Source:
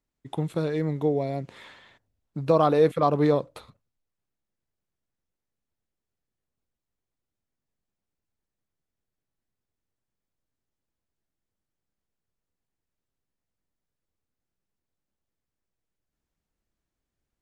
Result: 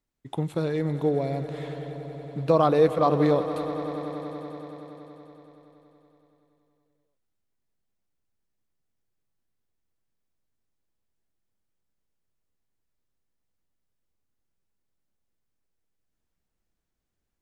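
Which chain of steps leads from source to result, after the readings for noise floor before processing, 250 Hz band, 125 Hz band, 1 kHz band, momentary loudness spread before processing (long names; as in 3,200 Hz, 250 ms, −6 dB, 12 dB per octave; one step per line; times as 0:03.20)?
below −85 dBFS, +1.0 dB, +0.5 dB, +0.5 dB, 16 LU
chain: echo that builds up and dies away 94 ms, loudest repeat 5, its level −17 dB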